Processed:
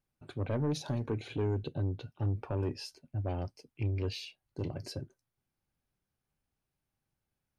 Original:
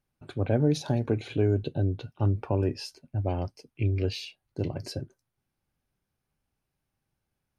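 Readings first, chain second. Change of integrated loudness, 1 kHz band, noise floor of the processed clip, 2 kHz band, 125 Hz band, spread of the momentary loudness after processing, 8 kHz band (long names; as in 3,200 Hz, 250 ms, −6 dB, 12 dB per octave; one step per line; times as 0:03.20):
−7.0 dB, −6.0 dB, below −85 dBFS, −5.5 dB, −6.5 dB, 11 LU, −4.5 dB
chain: soft clipping −20.5 dBFS, distortion −13 dB
level −4.5 dB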